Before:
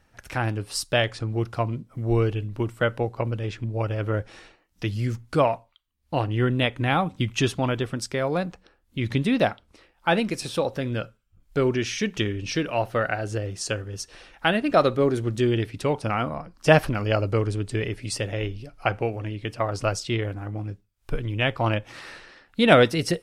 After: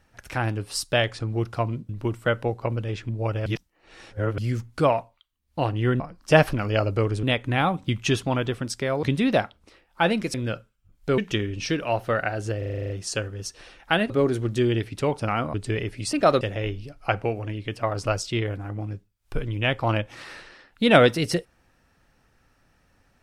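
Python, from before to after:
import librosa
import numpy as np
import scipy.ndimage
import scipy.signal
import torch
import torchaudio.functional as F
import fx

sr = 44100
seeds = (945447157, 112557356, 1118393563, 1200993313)

y = fx.edit(x, sr, fx.cut(start_s=1.89, length_s=0.55),
    fx.reverse_span(start_s=4.01, length_s=0.92),
    fx.cut(start_s=8.35, length_s=0.75),
    fx.cut(start_s=10.41, length_s=0.41),
    fx.cut(start_s=11.66, length_s=0.38),
    fx.stutter(start_s=13.44, slice_s=0.04, count=9),
    fx.move(start_s=14.64, length_s=0.28, to_s=18.18),
    fx.move(start_s=16.36, length_s=1.23, to_s=6.55), tone=tone)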